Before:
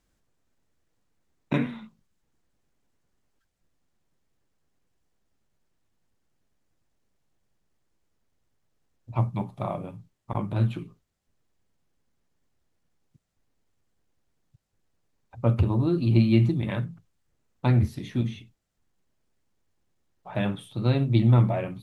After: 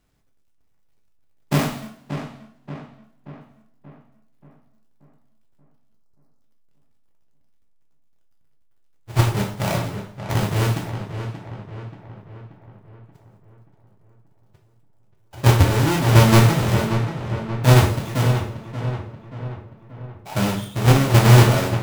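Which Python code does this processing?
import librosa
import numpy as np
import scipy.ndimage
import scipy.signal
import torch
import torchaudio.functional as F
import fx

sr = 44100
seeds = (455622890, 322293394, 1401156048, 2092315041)

p1 = fx.halfwave_hold(x, sr)
p2 = fx.level_steps(p1, sr, step_db=15)
p3 = p1 + F.gain(torch.from_numpy(p2), 0.0).numpy()
p4 = fx.spec_erase(p3, sr, start_s=5.94, length_s=0.47, low_hz=1400.0, high_hz=3800.0)
p5 = p4 + fx.echo_filtered(p4, sr, ms=581, feedback_pct=54, hz=2800.0, wet_db=-9.0, dry=0)
p6 = fx.rev_double_slope(p5, sr, seeds[0], early_s=0.45, late_s=2.2, knee_db=-28, drr_db=-0.5)
y = F.gain(torch.from_numpy(p6), -3.5).numpy()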